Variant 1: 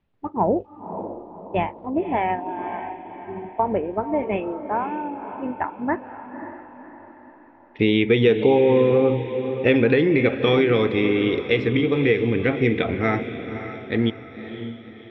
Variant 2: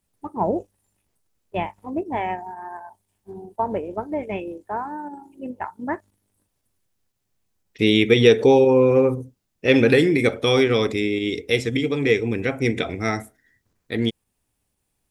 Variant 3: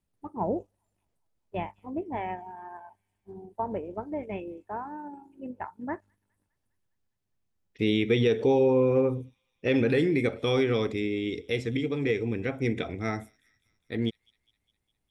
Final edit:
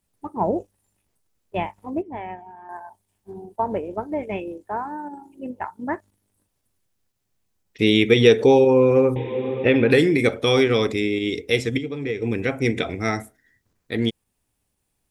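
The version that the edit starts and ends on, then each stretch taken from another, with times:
2
2.02–2.69 s: from 3
9.16–9.91 s: from 1
11.78–12.22 s: from 3

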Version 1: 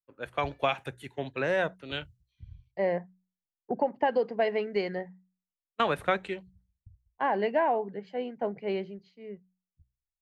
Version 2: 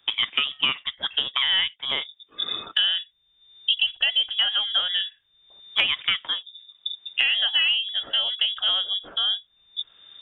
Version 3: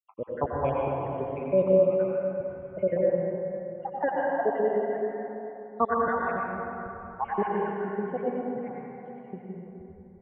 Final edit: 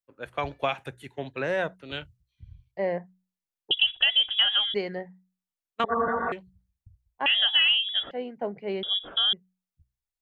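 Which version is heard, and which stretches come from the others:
1
3.71–4.74 s: from 2
5.84–6.32 s: from 3
7.26–8.11 s: from 2
8.83–9.33 s: from 2

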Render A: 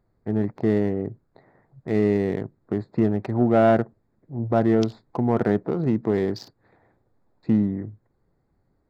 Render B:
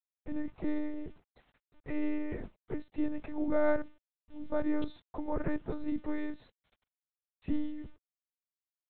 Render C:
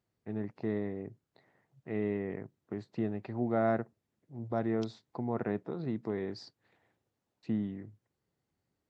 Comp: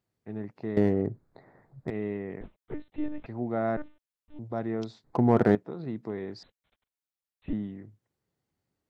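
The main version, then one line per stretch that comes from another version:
C
0.77–1.90 s: from A
2.41–3.26 s: from B
3.77–4.39 s: from B
5.04–5.55 s: from A
6.43–7.53 s: from B

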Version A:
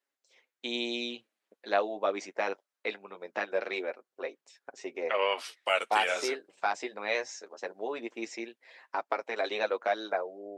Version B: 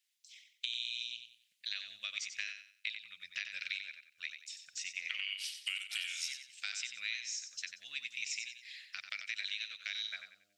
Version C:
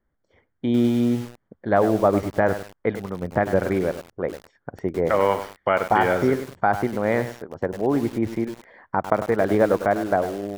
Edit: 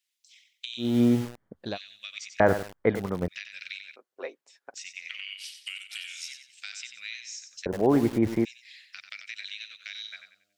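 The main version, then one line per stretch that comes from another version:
B
0.89–1.66 s: from C, crossfade 0.24 s
2.40–3.28 s: from C
3.96–4.74 s: from A
7.66–8.45 s: from C

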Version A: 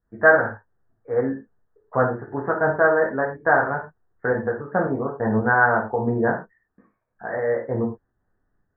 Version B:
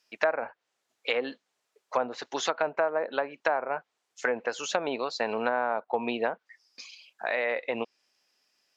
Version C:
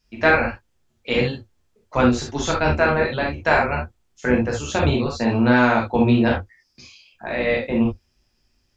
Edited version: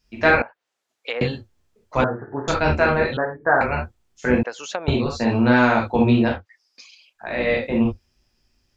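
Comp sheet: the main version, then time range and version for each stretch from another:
C
0.42–1.21 s: from B
2.04–2.48 s: from A
3.17–3.61 s: from A
4.43–4.88 s: from B
6.34–7.26 s: from B, crossfade 0.24 s

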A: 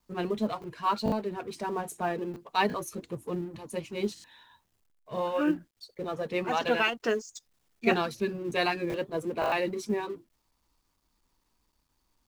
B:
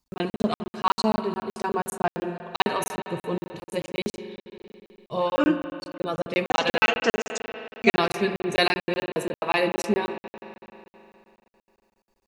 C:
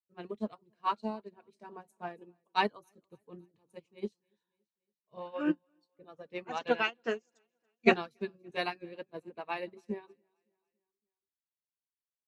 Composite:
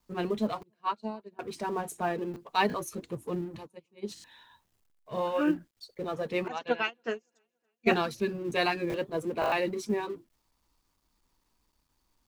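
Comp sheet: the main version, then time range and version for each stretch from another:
A
0.63–1.39 s: from C
3.66–4.09 s: from C, crossfade 0.06 s
6.48–7.87 s: from C
not used: B

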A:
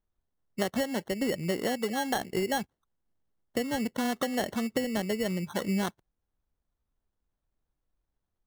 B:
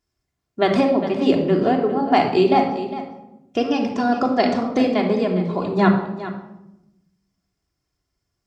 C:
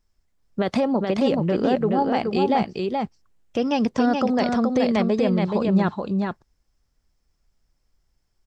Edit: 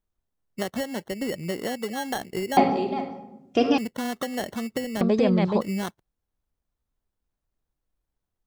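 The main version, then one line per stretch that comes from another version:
A
2.57–3.78 s: from B
5.01–5.61 s: from C

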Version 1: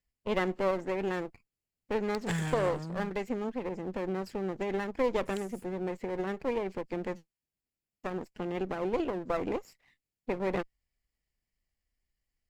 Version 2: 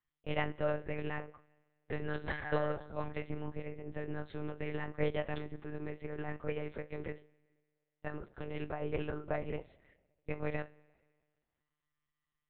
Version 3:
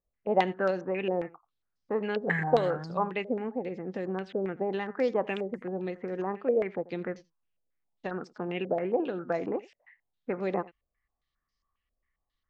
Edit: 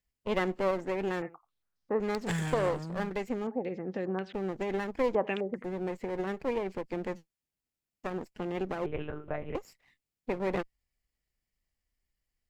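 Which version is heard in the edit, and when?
1
1.22–2.00 s: from 3
3.47–4.34 s: from 3
5.15–5.64 s: from 3
8.86–9.55 s: from 2

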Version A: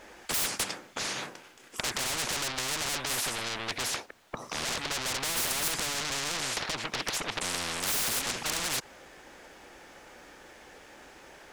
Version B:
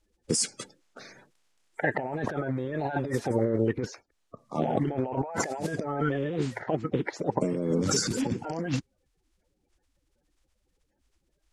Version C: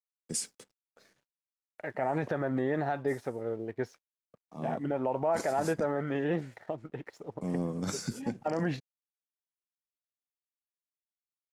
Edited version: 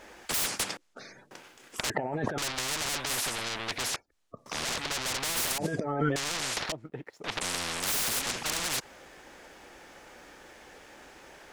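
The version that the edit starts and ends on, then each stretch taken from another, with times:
A
0.77–1.31 s: from B
1.90–2.38 s: from B
3.96–4.46 s: from B
5.58–6.16 s: from B
6.72–7.24 s: from C

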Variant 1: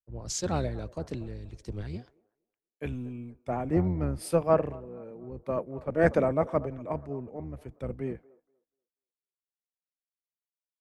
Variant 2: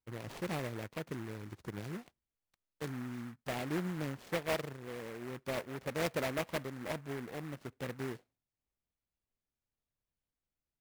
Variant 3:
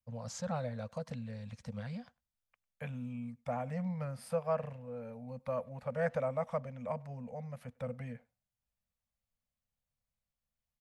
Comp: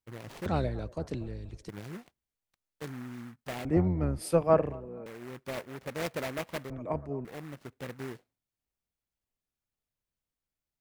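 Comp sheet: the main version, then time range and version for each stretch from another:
2
0.46–1.69 s: from 1
3.65–5.06 s: from 1
6.70–7.25 s: from 1
not used: 3

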